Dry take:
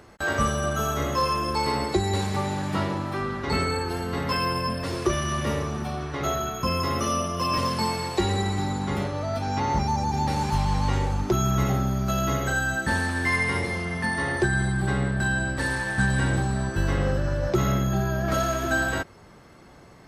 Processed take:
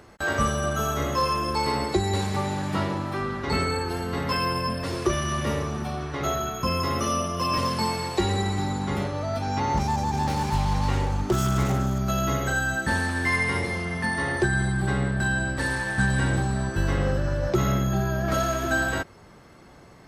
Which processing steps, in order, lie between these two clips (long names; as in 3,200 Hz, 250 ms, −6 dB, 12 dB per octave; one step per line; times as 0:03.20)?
0:09.77–0:11.99: phase distortion by the signal itself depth 0.14 ms